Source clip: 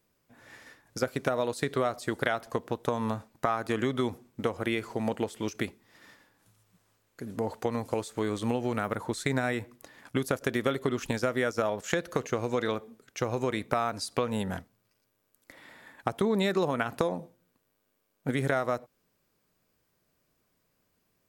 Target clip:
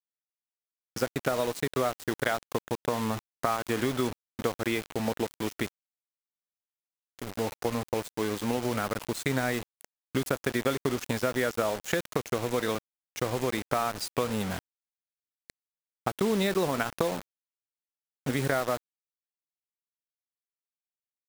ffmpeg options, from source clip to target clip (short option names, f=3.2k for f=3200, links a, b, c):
-filter_complex "[0:a]asettb=1/sr,asplit=3[a][b][c];[a]atrim=end=8.134[d];[b]atrim=start=8.13:end=8.58,asetpts=PTS-STARTPTS,afade=t=in:d=0.004:c=qsin,afade=t=out:st=0.446:d=0.004:c=qsin,equalizer=f=84:w=2.1:g=-9[e];[c]atrim=start=8.576[f];[d][e]acrossfade=d=0.004:c1=hsin:c2=qsin[g];[g][f]acrossfade=d=0.004:c1=qsin:c2=hsin,acrusher=bits=5:mix=0:aa=0.000001"